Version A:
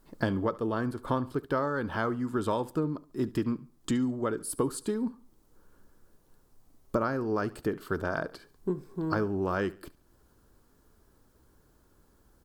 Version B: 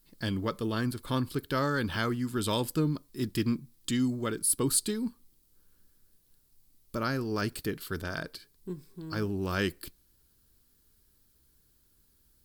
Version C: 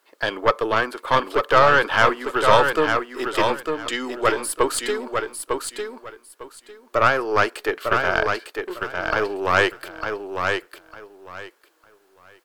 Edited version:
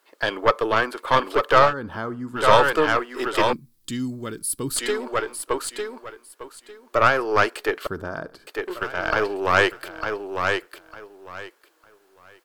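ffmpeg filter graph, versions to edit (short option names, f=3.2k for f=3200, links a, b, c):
-filter_complex "[0:a]asplit=2[a][b];[2:a]asplit=4[c][d][e][f];[c]atrim=end=1.74[g];[a]atrim=start=1.64:end=2.44[h];[d]atrim=start=2.34:end=3.532[i];[1:a]atrim=start=3.528:end=4.762[j];[e]atrim=start=4.758:end=7.872[k];[b]atrim=start=7.868:end=8.472[l];[f]atrim=start=8.468[m];[g][h]acrossfade=d=0.1:c1=tri:c2=tri[n];[n][i]acrossfade=d=0.1:c1=tri:c2=tri[o];[o][j]acrossfade=d=0.004:c1=hsin:c2=hsin[p];[p][k]acrossfade=d=0.004:c1=hsin:c2=hsin[q];[q][l]acrossfade=d=0.004:c1=hsin:c2=hsin[r];[r][m]acrossfade=d=0.004:c1=hsin:c2=hsin"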